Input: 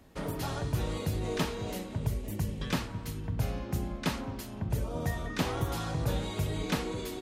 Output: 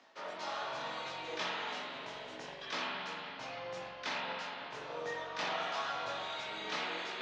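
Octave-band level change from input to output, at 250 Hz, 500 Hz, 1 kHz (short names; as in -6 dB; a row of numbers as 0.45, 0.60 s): -16.5, -5.0, +1.0 dB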